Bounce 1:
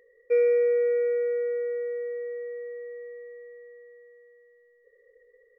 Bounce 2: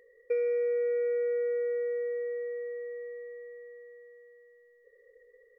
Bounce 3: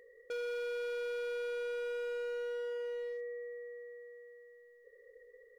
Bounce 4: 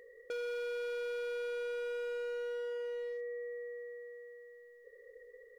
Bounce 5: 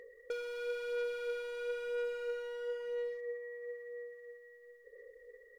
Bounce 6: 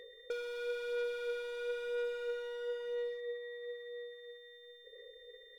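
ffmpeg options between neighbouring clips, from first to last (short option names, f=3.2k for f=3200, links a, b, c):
-af "acompressor=threshold=-27dB:ratio=6"
-af "asoftclip=type=hard:threshold=-38dB,volume=1dB"
-af "acompressor=threshold=-41dB:ratio=6,volume=3dB"
-af "aeval=exprs='0.0211*(cos(1*acos(clip(val(0)/0.0211,-1,1)))-cos(1*PI/2))+0.000119*(cos(4*acos(clip(val(0)/0.0211,-1,1)))-cos(4*PI/2))':c=same,aphaser=in_gain=1:out_gain=1:delay=3.2:decay=0.38:speed=1:type=sinusoidal,volume=-1dB"
-af "aeval=exprs='val(0)+0.00126*sin(2*PI*3600*n/s)':c=same"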